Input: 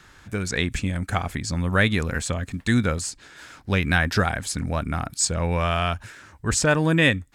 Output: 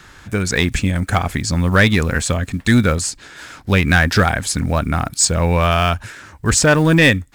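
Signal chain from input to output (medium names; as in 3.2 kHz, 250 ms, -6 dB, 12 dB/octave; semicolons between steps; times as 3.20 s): block-companded coder 7-bit; in parallel at -6.5 dB: wavefolder -15 dBFS; on the sum: trim +4.5 dB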